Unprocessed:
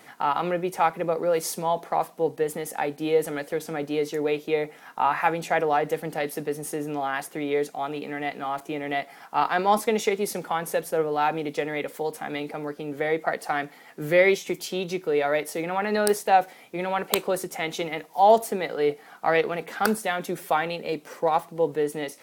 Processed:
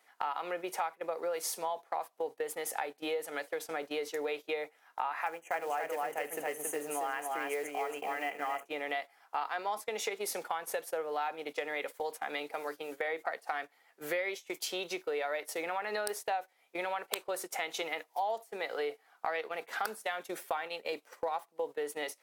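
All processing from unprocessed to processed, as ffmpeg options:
ffmpeg -i in.wav -filter_complex "[0:a]asettb=1/sr,asplit=3[link_01][link_02][link_03];[link_01]atrim=end=5.264[link_04];[link_02]atrim=start=5.26:end=8.66,asetpts=PTS-STARTPTS,afade=type=in:duration=0.004:curve=qsin,afade=type=out:start_time=3.396:duration=0.004:curve=qsin,asuperstop=centerf=4400:order=20:qfactor=1.6,acrusher=bits=6:mode=log:mix=0:aa=0.000001,aecho=1:1:75|276:0.119|0.631,atrim=end_sample=149940[link_05];[link_03]atrim=start=8.656[link_06];[link_04][link_05]acrossfade=duration=0.004:curve1=hsin:curve2=qsin[link_07];[link_07][link_06]acrossfade=duration=0.004:curve1=qsin:curve2=hsin,asettb=1/sr,asplit=3[link_08][link_09][link_10];[link_08]atrim=end=12.494[link_11];[link_09]atrim=start=12.49:end=13.24,asetpts=PTS-STARTPTS,afade=type=in:duration=0.004:curve=qsin,afade=type=out:start_time=0.746:duration=0.004:curve=qsin,acrossover=split=3500[link_12][link_13];[link_13]acompressor=threshold=-56dB:ratio=4:attack=1:release=60[link_14];[link_12][link_14]amix=inputs=2:normalize=0,highshelf=frequency=4300:gain=9,bandreject=frequency=50:width_type=h:width=6,bandreject=frequency=100:width_type=h:width=6,bandreject=frequency=150:width_type=h:width=6,bandreject=frequency=200:width_type=h:width=6,bandreject=frequency=250:width_type=h:width=6,bandreject=frequency=300:width_type=h:width=6,bandreject=frequency=350:width_type=h:width=6[link_15];[link_10]atrim=start=13.236[link_16];[link_11][link_15]acrossfade=duration=0.004:curve1=hsin:curve2=qsin[link_17];[link_17][link_16]acrossfade=duration=0.004:curve1=qsin:curve2=hsin,highpass=560,acompressor=threshold=-32dB:ratio=6,agate=range=-16dB:threshold=-40dB:ratio=16:detection=peak" out.wav

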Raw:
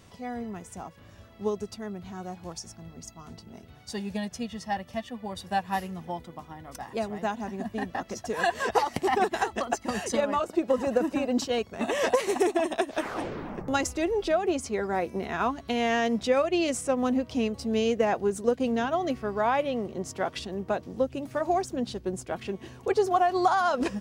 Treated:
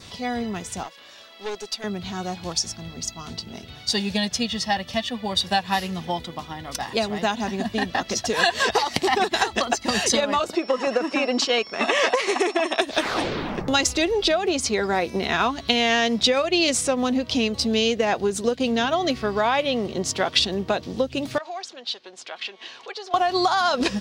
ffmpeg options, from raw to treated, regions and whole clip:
ffmpeg -i in.wav -filter_complex "[0:a]asettb=1/sr,asplit=3[link_01][link_02][link_03];[link_01]atrim=end=0.834[link_04];[link_02]atrim=start=0.83:end=1.84,asetpts=PTS-STARTPTS,afade=type=in:duration=0.004:curve=qsin,afade=type=out:start_time=1.006:duration=0.004:curve=qsin,highpass=490,aeval=exprs='(tanh(50.1*val(0)+0.5)-tanh(0.5))/50.1':channel_layout=same[link_05];[link_03]atrim=start=1.836[link_06];[link_04][link_05]acrossfade=duration=0.004:curve1=hsin:curve2=qsin[link_07];[link_07][link_06]acrossfade=duration=0.004:curve1=qsin:curve2=hsin,asettb=1/sr,asplit=3[link_08][link_09][link_10];[link_08]atrim=end=10.554[link_11];[link_09]atrim=start=10.55:end=12.8,asetpts=PTS-STARTPTS,afade=type=in:duration=0.004:curve=qsin,afade=type=out:start_time=2.246:duration=0.004:curve=qsin,aeval=exprs='val(0)+0.00282*sin(2*PI*5400*n/s)':channel_layout=same,highpass=290,equalizer=frequency=1200:width_type=q:width=4:gain=6,equalizer=frequency=2200:width_type=q:width=4:gain=4,equalizer=frequency=3900:width_type=q:width=4:gain=-7,equalizer=frequency=5600:width_type=q:width=4:gain=-4,equalizer=frequency=7900:width_type=q:width=4:gain=-6,lowpass=frequency=9100:width=0.5412,lowpass=frequency=9100:width=1.3066[link_12];[link_10]atrim=start=12.796[link_13];[link_11][link_12]acrossfade=duration=0.004:curve1=hsin:curve2=qsin[link_14];[link_14][link_13]acrossfade=duration=0.004:curve1=qsin:curve2=hsin,asettb=1/sr,asplit=3[link_15][link_16][link_17];[link_15]atrim=end=21.384[link_18];[link_16]atrim=start=21.38:end=23.14,asetpts=PTS-STARTPTS,afade=type=in:duration=0.004:curve=qsin,afade=type=out:start_time=1.756:duration=0.004:curve=qsin,acompressor=threshold=-43dB:ratio=2:attack=3.2:release=140:knee=1:detection=peak,highpass=750,lowpass=4900[link_19];[link_17]atrim=start=23.136[link_20];[link_18][link_19]acrossfade=duration=0.004:curve1=hsin:curve2=qsin[link_21];[link_21][link_20]acrossfade=duration=0.004:curve1=qsin:curve2=hsin,adynamicequalizer=threshold=0.00251:dfrequency=3000:dqfactor=4.5:tfrequency=3000:tqfactor=4.5:attack=5:release=100:ratio=0.375:range=1.5:mode=cutabove:tftype=bell,acompressor=threshold=-28dB:ratio=3,equalizer=frequency=3900:width=0.92:gain=14,volume=7.5dB" out.wav

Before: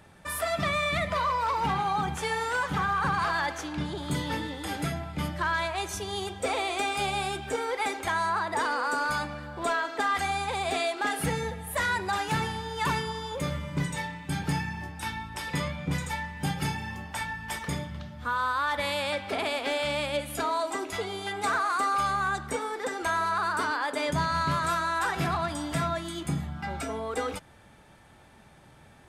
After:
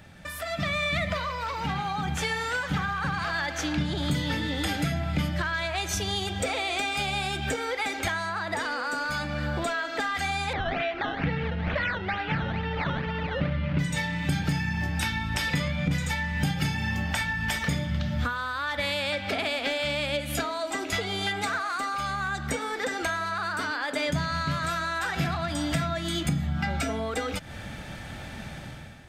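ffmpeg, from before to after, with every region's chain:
ffmpeg -i in.wav -filter_complex "[0:a]asettb=1/sr,asplit=3[link_01][link_02][link_03];[link_01]atrim=end=10.534[link_04];[link_02]atrim=start=10.53:end=13.79,asetpts=PTS-STARTPTS,afade=type=in:duration=0.004:curve=qsin,afade=type=out:start_time=3.256:duration=0.004:curve=qsin,acrusher=samples=13:mix=1:aa=0.000001:lfo=1:lforange=13:lforate=2.2,lowpass=frequency=3000:width=0.5412,lowpass=frequency=3000:width=1.3066[link_05];[link_03]atrim=start=13.786[link_06];[link_04][link_05]acrossfade=duration=0.004:curve1=hsin:curve2=qsin[link_07];[link_07][link_06]acrossfade=duration=0.004:curve1=qsin:curve2=hsin,acompressor=threshold=-41dB:ratio=10,equalizer=frequency=400:width_type=o:width=0.67:gain=-8,equalizer=frequency=1000:width_type=o:width=0.67:gain=-10,equalizer=frequency=10000:width_type=o:width=0.67:gain=-9,dynaudnorm=framelen=140:gausssize=7:maxgain=12dB,volume=6.5dB" out.wav

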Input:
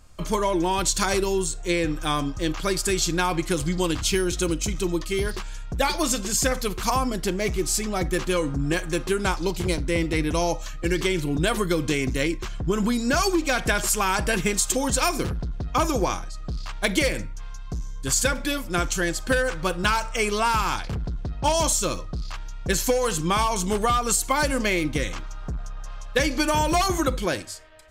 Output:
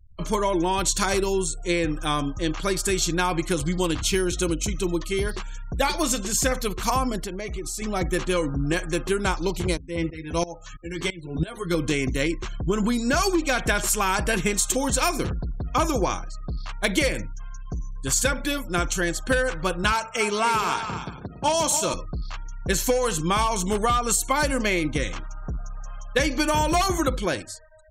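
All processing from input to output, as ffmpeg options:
ffmpeg -i in.wav -filter_complex "[0:a]asettb=1/sr,asplit=3[link_01][link_02][link_03];[link_01]atrim=end=7.194[link_04];[link_02]atrim=start=7.19:end=7.82,asetpts=PTS-STARTPTS,afade=type=in:duration=0.004:curve=qsin,afade=type=out:start_time=0.626:duration=0.004:curve=qsin,equalizer=frequency=180:width=0.73:gain=-3,acompressor=threshold=-27dB:ratio=8:attack=3.2:release=140:knee=1:detection=peak[link_05];[link_03]atrim=start=7.816[link_06];[link_04][link_05]acrossfade=duration=0.004:curve1=hsin:curve2=qsin[link_07];[link_07][link_06]acrossfade=duration=0.004:curve1=qsin:curve2=hsin,asettb=1/sr,asplit=3[link_08][link_09][link_10];[link_08]atrim=end=9.774[link_11];[link_09]atrim=start=9.77:end=11.75,asetpts=PTS-STARTPTS,afade=type=in:duration=0.004:curve=qsin,afade=type=out:start_time=1.976:duration=0.004:curve=qsin,asplit=2[link_12][link_13];[link_13]adelay=12,volume=-4dB[link_14];[link_12][link_14]amix=inputs=2:normalize=0,atrim=end_sample=87318,aeval=exprs='val(0)*pow(10,-19*if(lt(mod(-3*n/s,1),2*abs(-3)/1000),1-mod(-3*n/s,1)/(2*abs(-3)/1000),(mod(-3*n/s,1)-2*abs(-3)/1000)/(1-2*abs(-3)/1000))/20)':channel_layout=same[link_15];[link_10]atrim=start=11.746[link_16];[link_11][link_15]acrossfade=duration=0.004:curve1=hsin:curve2=qsin[link_17];[link_17][link_16]acrossfade=duration=0.004:curve1=qsin:curve2=hsin,asettb=1/sr,asplit=3[link_18][link_19][link_20];[link_18]atrim=end=19.924[link_21];[link_19]atrim=start=19.92:end=21.94,asetpts=PTS-STARTPTS,afade=type=in:duration=0.004:curve=qsin,afade=type=out:start_time=2.016:duration=0.004:curve=qsin,highpass=140,aecho=1:1:228|284|430:0.126|0.335|0.119,atrim=end_sample=89082[link_22];[link_20]atrim=start=21.936[link_23];[link_21][link_22]acrossfade=duration=0.004:curve1=hsin:curve2=qsin[link_24];[link_24][link_23]acrossfade=duration=0.004:curve1=qsin:curve2=hsin,bandreject=frequency=4900:width=13,afftfilt=real='re*gte(hypot(re,im),0.00708)':imag='im*gte(hypot(re,im),0.00708)':win_size=1024:overlap=0.75" out.wav

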